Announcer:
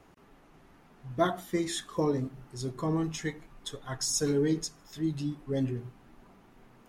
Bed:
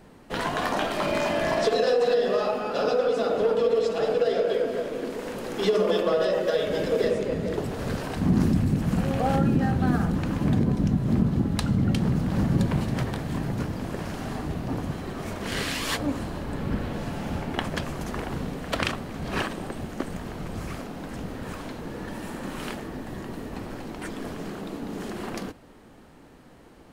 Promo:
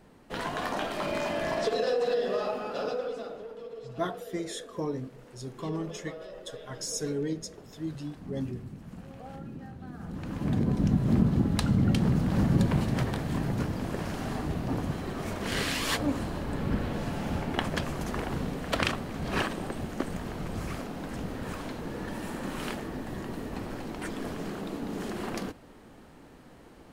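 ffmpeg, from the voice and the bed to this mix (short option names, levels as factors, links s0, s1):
-filter_complex "[0:a]adelay=2800,volume=0.596[s0];[1:a]volume=4.73,afade=t=out:st=2.63:d=0.82:silence=0.188365,afade=t=in:st=9.96:d=0.99:silence=0.112202[s1];[s0][s1]amix=inputs=2:normalize=0"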